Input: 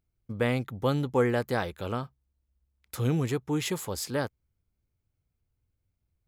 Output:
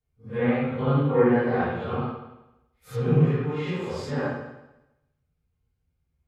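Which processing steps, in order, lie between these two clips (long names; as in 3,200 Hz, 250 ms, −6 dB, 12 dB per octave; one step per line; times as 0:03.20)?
random phases in long frames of 200 ms
treble cut that deepens with the level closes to 2,300 Hz, closed at −27 dBFS
convolution reverb RT60 0.95 s, pre-delay 3 ms, DRR −7 dB
level −4 dB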